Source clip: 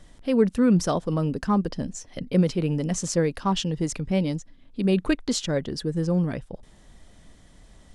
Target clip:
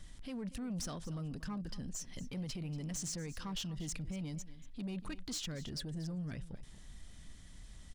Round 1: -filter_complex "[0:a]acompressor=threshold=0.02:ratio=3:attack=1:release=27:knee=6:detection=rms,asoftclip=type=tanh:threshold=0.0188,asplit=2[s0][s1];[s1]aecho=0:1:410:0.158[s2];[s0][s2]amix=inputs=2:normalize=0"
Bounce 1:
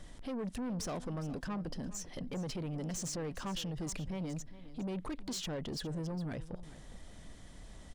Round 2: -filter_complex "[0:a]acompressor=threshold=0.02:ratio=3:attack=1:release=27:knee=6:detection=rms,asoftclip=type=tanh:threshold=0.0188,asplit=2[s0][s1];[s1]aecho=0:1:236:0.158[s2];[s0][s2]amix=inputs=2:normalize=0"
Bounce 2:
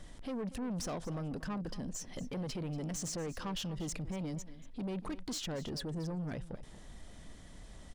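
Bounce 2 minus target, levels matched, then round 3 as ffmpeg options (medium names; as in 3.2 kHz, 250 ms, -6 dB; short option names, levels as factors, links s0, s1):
500 Hz band +6.0 dB
-filter_complex "[0:a]acompressor=threshold=0.02:ratio=3:attack=1:release=27:knee=6:detection=rms,equalizer=f=550:w=0.53:g=-12,asoftclip=type=tanh:threshold=0.0188,asplit=2[s0][s1];[s1]aecho=0:1:236:0.158[s2];[s0][s2]amix=inputs=2:normalize=0"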